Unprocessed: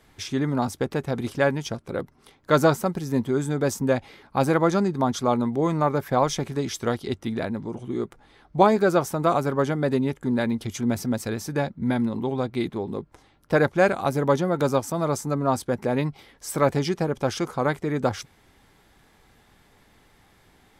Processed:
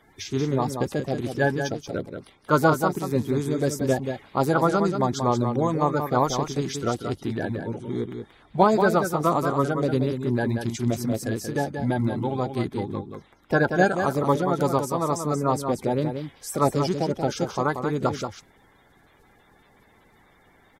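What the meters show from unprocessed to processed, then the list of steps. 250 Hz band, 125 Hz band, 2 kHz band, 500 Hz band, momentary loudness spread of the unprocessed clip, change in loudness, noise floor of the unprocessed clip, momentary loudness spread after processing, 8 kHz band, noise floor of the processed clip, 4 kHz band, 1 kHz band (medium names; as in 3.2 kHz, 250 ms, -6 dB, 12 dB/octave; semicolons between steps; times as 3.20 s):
-0.5 dB, +1.0 dB, +0.5 dB, -0.5 dB, 10 LU, 0.0 dB, -59 dBFS, 10 LU, -0.5 dB, -58 dBFS, -1.0 dB, +1.5 dB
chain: coarse spectral quantiser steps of 30 dB; dynamic bell 2.5 kHz, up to -4 dB, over -40 dBFS, Q 1.5; delay 182 ms -7 dB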